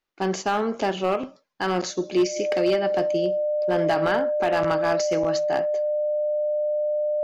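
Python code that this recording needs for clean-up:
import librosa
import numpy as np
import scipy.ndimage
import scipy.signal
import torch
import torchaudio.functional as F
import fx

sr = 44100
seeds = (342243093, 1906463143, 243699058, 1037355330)

y = fx.fix_declip(x, sr, threshold_db=-14.5)
y = fx.notch(y, sr, hz=600.0, q=30.0)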